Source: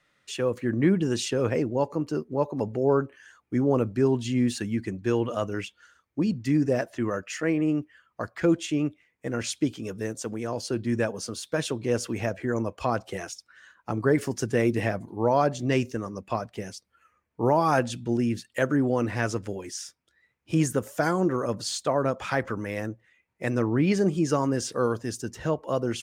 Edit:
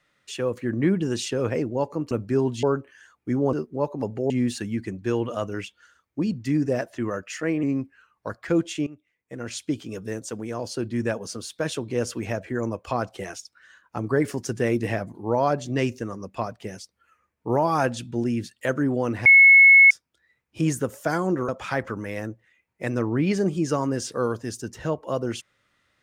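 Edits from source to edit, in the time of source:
2.11–2.88 s: swap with 3.78–4.30 s
7.63–8.23 s: speed 90%
8.80–9.79 s: fade in, from -19.5 dB
19.19–19.84 s: bleep 2.19 kHz -8.5 dBFS
21.42–22.09 s: delete

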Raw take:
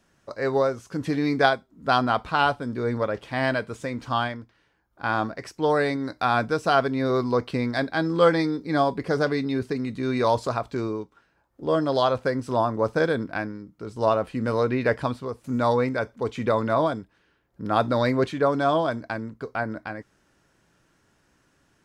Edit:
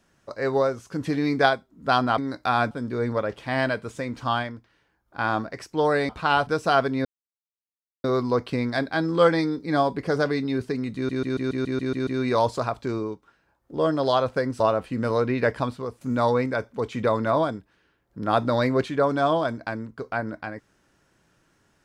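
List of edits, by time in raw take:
2.18–2.56 s: swap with 5.94–6.47 s
7.05 s: insert silence 0.99 s
9.96 s: stutter 0.14 s, 9 plays
12.49–14.03 s: delete

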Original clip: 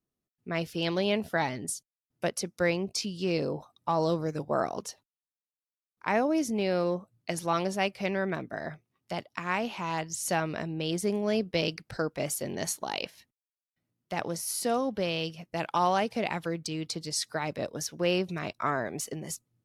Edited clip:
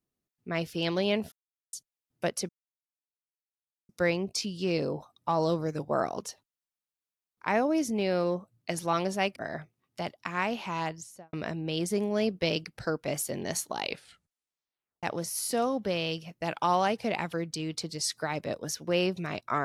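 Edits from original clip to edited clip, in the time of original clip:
1.32–1.73 s: mute
2.49 s: insert silence 1.40 s
7.96–8.48 s: delete
9.91–10.45 s: studio fade out
12.95 s: tape stop 1.20 s

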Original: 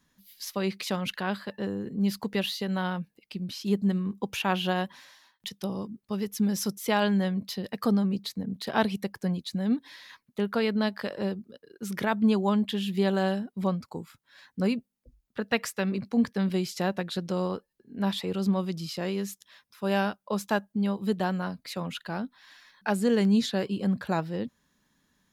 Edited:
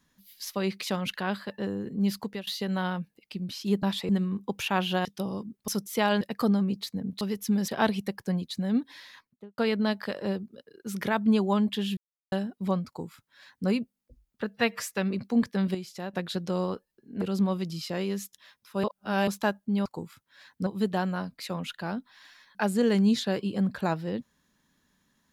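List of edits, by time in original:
2.18–2.47 s: fade out, to -20 dB
4.79–5.49 s: delete
6.12–6.59 s: move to 8.64 s
7.12–7.64 s: delete
10.01–10.54 s: studio fade out
12.93–13.28 s: mute
13.83–14.64 s: copy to 20.93 s
15.43–15.72 s: stretch 1.5×
16.56–16.95 s: gain -8.5 dB
18.03–18.29 s: move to 3.83 s
19.91–20.35 s: reverse

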